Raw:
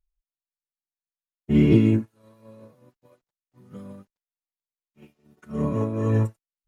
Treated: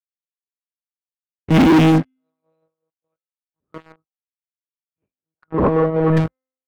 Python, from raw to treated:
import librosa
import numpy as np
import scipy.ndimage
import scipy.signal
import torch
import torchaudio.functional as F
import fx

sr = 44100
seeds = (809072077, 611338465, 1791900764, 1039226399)

y = fx.bin_expand(x, sr, power=1.5)
y = fx.lpc_monotone(y, sr, seeds[0], pitch_hz=160.0, order=8)
y = scipy.signal.sosfilt(scipy.signal.butter(4, 50.0, 'highpass', fs=sr, output='sos'), y)
y = fx.low_shelf(y, sr, hz=83.0, db=-12.0)
y = fx.notch(y, sr, hz=710.0, q=12.0)
y = fx.comb_fb(y, sr, f0_hz=260.0, decay_s=0.86, harmonics='all', damping=0.0, mix_pct=40)
y = fx.leveller(y, sr, passes=5)
y = fx.lowpass(y, sr, hz=1500.0, slope=12, at=(3.92, 6.17))
y = F.gain(torch.from_numpy(y), 6.0).numpy()